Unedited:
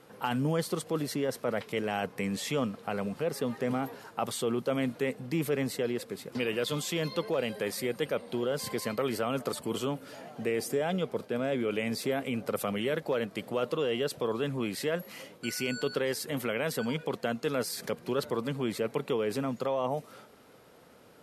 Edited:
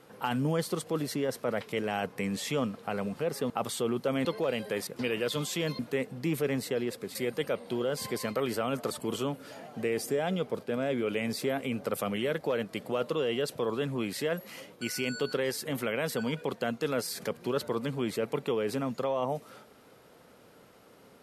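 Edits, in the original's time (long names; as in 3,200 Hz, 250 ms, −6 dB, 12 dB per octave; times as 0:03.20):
0:03.50–0:04.12: remove
0:04.87–0:06.23: swap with 0:07.15–0:07.77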